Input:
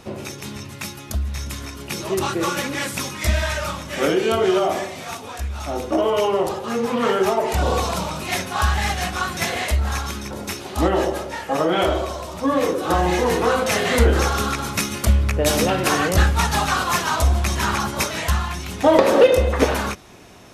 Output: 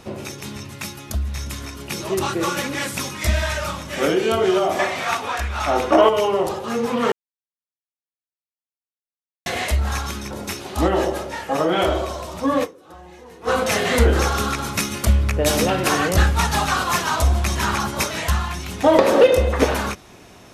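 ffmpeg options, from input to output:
ffmpeg -i in.wav -filter_complex "[0:a]asettb=1/sr,asplit=3[link_01][link_02][link_03];[link_01]atrim=end=4.794[link_04];[link_02]atrim=start=4.79:end=6.09,asetpts=PTS-STARTPTS,afade=type=in:duration=0.004:curve=qsin,afade=type=out:start_time=1.296:duration=0.004:curve=qsin,equalizer=frequency=1500:width=0.41:gain=12[link_05];[link_03]atrim=start=6.086[link_06];[link_04][link_05]acrossfade=duration=0.004:curve1=hsin:curve2=qsin[link_07];[link_07][link_06]acrossfade=duration=0.004:curve1=qsin:curve2=hsin,asplit=5[link_08][link_09][link_10][link_11][link_12];[link_08]atrim=end=7.12,asetpts=PTS-STARTPTS,afade=type=out:start_time=7.116:duration=0.004:curve=hsin[link_13];[link_09]atrim=start=7.12:end=9.46,asetpts=PTS-STARTPTS,volume=0[link_14];[link_10]atrim=start=9.46:end=12.84,asetpts=PTS-STARTPTS,afade=type=in:duration=0.004:curve=hsin,afade=type=out:start_time=3.17:duration=0.21:curve=exp:silence=0.0668344[link_15];[link_11]atrim=start=12.84:end=13.28,asetpts=PTS-STARTPTS,volume=-23.5dB[link_16];[link_12]atrim=start=13.28,asetpts=PTS-STARTPTS,afade=type=in:duration=0.21:curve=exp:silence=0.0668344[link_17];[link_13][link_14][link_15][link_16][link_17]concat=n=5:v=0:a=1" out.wav

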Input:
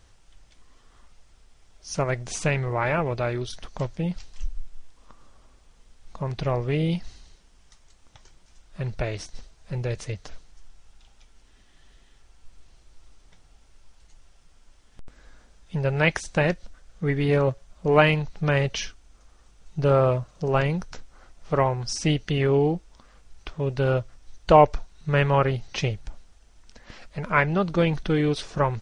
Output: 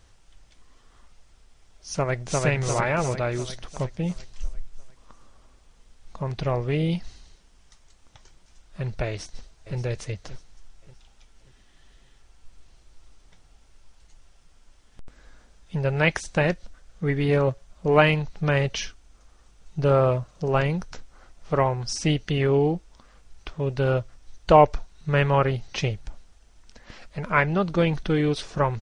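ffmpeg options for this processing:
ffmpeg -i in.wav -filter_complex "[0:a]asplit=2[link_01][link_02];[link_02]afade=type=in:start_time=1.95:duration=0.01,afade=type=out:start_time=2.45:duration=0.01,aecho=0:1:350|700|1050|1400|1750|2100|2450|2800:0.944061|0.519233|0.285578|0.157068|0.0863875|0.0475131|0.0261322|0.0143727[link_03];[link_01][link_03]amix=inputs=2:normalize=0,asplit=2[link_04][link_05];[link_05]afade=type=in:start_time=9.08:duration=0.01,afade=type=out:start_time=9.77:duration=0.01,aecho=0:1:580|1160|1740|2320:0.211349|0.0845396|0.0338158|0.0135263[link_06];[link_04][link_06]amix=inputs=2:normalize=0" out.wav

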